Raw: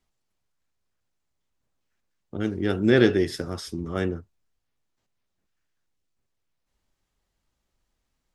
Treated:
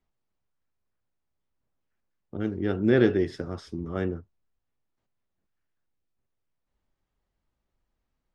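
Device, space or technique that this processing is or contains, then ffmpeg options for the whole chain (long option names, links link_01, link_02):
through cloth: -af "lowpass=7900,highshelf=frequency=3000:gain=-12,volume=-2dB"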